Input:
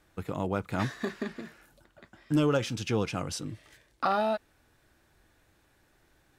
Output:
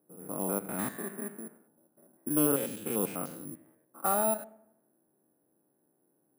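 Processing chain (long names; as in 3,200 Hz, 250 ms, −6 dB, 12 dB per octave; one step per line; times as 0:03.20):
spectrum averaged block by block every 100 ms
low-pass that shuts in the quiet parts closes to 520 Hz, open at −26 dBFS
high-pass filter 180 Hz 24 dB per octave
bad sample-rate conversion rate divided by 4×, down filtered, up zero stuff
high-shelf EQ 2,400 Hz −10 dB
on a send: delay with a low-pass on its return 78 ms, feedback 50%, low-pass 820 Hz, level −16 dB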